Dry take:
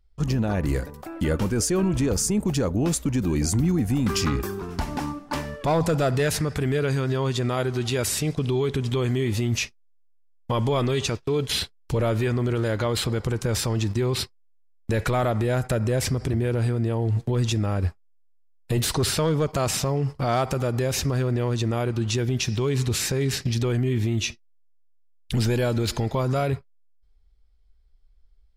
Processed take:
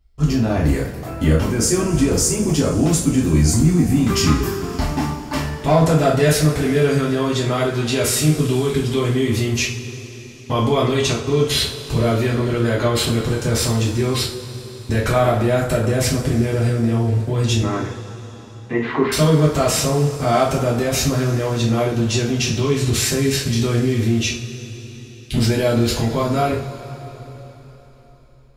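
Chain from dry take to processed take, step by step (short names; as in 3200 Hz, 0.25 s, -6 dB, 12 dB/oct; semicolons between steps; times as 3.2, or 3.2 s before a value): 17.62–19.12 speaker cabinet 240–2200 Hz, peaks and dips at 250 Hz +5 dB, 410 Hz +4 dB, 620 Hz -6 dB, 1000 Hz +7 dB, 2000 Hz +8 dB; two-slope reverb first 0.37 s, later 4.2 s, from -20 dB, DRR -5.5 dB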